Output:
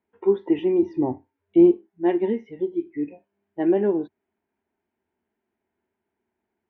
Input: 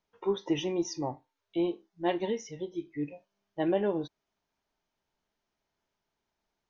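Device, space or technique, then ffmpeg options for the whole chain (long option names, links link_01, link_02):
bass cabinet: -filter_complex "[0:a]asettb=1/sr,asplit=3[link_01][link_02][link_03];[link_01]atrim=end=0.824[link_04];[link_02]atrim=start=0.82:end=1.71,asetpts=PTS-STARTPTS,afade=type=in:duration=0.004:curve=qsin,afade=type=out:start_time=0.886:duration=0.004:curve=qsin,lowshelf=frequency=310:gain=11.5[link_05];[link_03]atrim=start=1.706[link_06];[link_04][link_05]acrossfade=duration=0.004:curve1=hsin:curve2=qsin[link_07];[link_07][link_06]acrossfade=duration=0.004:curve1=qsin:curve2=hsin,highpass=84,equalizer=frequency=88:width_type=q:width=4:gain=8,equalizer=frequency=140:width_type=q:width=4:gain=-10,equalizer=frequency=230:width_type=q:width=4:gain=8,equalizer=frequency=370:width_type=q:width=4:gain=9,equalizer=frequency=560:width_type=q:width=4:gain=-5,equalizer=frequency=1200:width_type=q:width=4:gain=-8,lowpass=frequency=2300:width=0.5412,lowpass=frequency=2300:width=1.3066,volume=3.5dB"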